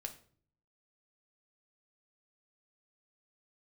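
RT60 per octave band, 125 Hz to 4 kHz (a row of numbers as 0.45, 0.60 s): 0.90, 0.75, 0.55, 0.45, 0.40, 0.35 s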